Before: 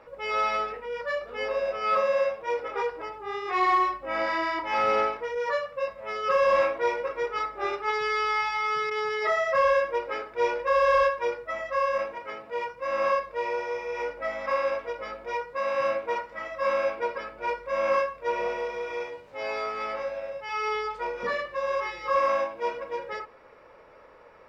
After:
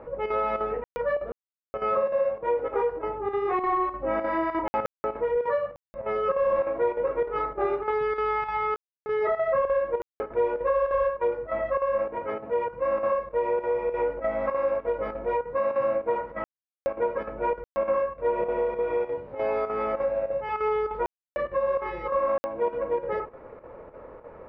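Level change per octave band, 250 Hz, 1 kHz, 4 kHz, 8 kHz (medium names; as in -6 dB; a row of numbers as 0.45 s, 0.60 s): +6.0 dB, -2.0 dB, under -10 dB, no reading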